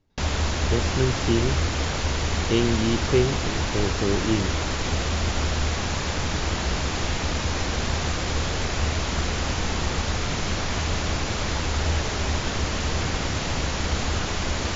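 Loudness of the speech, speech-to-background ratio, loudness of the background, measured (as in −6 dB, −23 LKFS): −26.0 LKFS, 0.0 dB, −26.0 LKFS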